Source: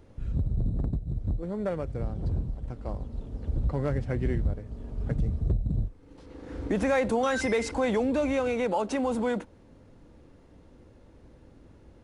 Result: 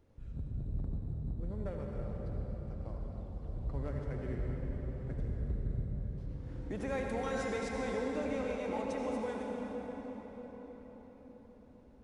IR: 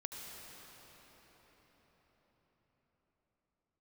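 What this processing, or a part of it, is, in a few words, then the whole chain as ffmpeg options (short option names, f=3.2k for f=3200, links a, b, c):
cathedral: -filter_complex "[1:a]atrim=start_sample=2205[a];[0:a][a]afir=irnorm=-1:irlink=0,volume=-8.5dB"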